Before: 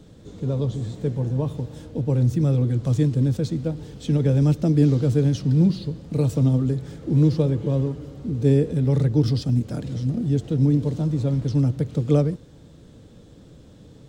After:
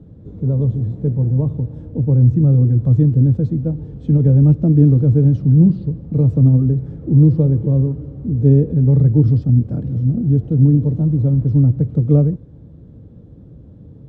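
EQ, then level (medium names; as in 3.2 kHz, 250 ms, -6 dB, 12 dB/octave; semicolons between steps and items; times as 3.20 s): high-pass 69 Hz; tilt EQ -4 dB/octave; treble shelf 2.1 kHz -11.5 dB; -3.0 dB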